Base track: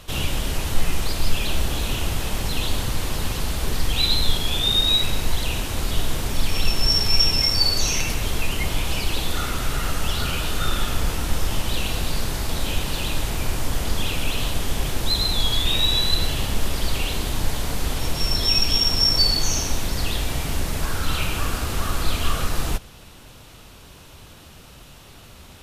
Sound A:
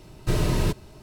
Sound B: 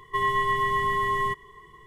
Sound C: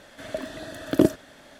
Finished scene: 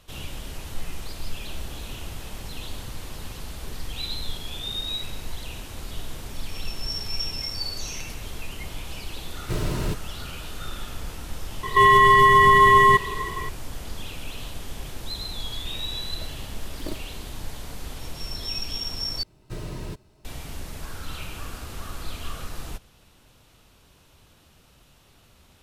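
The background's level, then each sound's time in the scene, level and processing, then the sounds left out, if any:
base track −11.5 dB
0:09.22: mix in A −4 dB
0:11.63: mix in B −6 dB + boost into a limiter +24.5 dB
0:15.87: mix in C −18 dB + stylus tracing distortion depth 0.41 ms
0:19.23: overwrite with A −11.5 dB

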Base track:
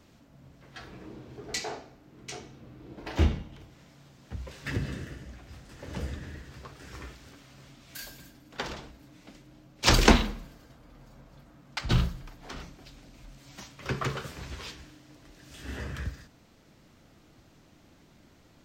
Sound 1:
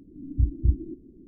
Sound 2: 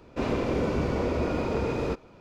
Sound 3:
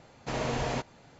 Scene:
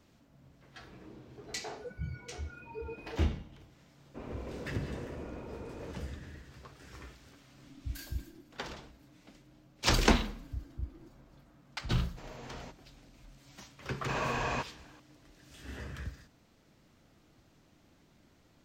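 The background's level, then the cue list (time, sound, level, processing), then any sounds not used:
base track −6 dB
0:01.23: mix in 2 −6 dB + noise reduction from a noise print of the clip's start 29 dB
0:03.98: mix in 2 −15.5 dB + high-frequency loss of the air 300 metres
0:07.47: mix in 1 −16.5 dB
0:10.14: mix in 1 −17.5 dB
0:11.90: mix in 3 −16.5 dB
0:13.81: mix in 3 −5 dB + hollow resonant body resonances 1,100/1,600/2,500 Hz, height 13 dB, ringing for 20 ms

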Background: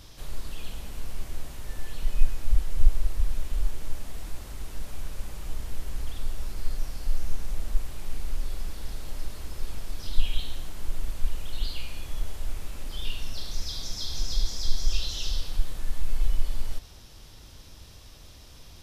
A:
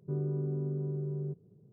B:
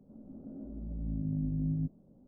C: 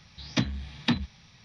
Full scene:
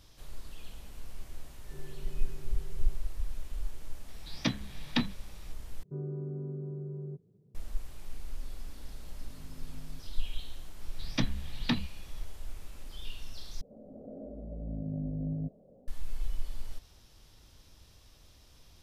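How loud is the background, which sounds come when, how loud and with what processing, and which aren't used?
background −9.5 dB
0:01.63: mix in A −13.5 dB + high-pass filter 210 Hz 6 dB per octave
0:04.08: mix in C −3.5 dB + high-pass filter 130 Hz
0:05.83: overwrite with A −4.5 dB
0:08.13: mix in B −13 dB + tilt shelving filter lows −7 dB
0:10.81: mix in C −4.5 dB
0:13.61: overwrite with B −2.5 dB + flat-topped bell 560 Hz +14 dB 1 octave

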